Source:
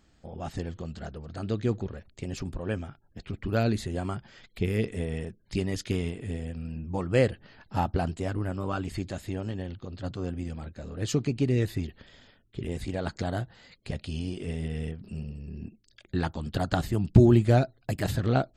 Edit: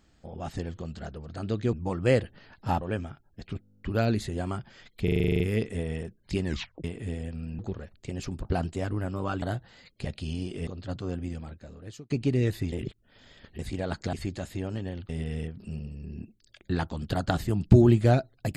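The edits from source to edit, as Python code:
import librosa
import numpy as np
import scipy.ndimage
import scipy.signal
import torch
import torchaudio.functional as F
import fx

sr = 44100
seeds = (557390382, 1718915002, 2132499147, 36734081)

y = fx.edit(x, sr, fx.swap(start_s=1.73, length_s=0.86, other_s=6.81, other_length_s=1.08),
    fx.stutter(start_s=3.39, slice_s=0.02, count=11),
    fx.stutter(start_s=4.62, slice_s=0.04, count=10),
    fx.tape_stop(start_s=5.66, length_s=0.4),
    fx.swap(start_s=8.86, length_s=0.96, other_s=13.28, other_length_s=1.25),
    fx.fade_out_span(start_s=10.44, length_s=0.81),
    fx.reverse_span(start_s=11.87, length_s=0.87), tone=tone)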